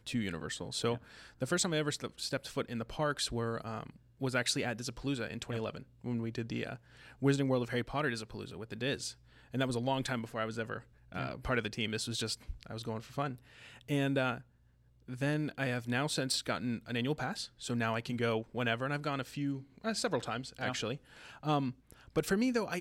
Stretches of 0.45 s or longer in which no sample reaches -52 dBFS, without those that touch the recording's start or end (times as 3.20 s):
14.42–15.08 s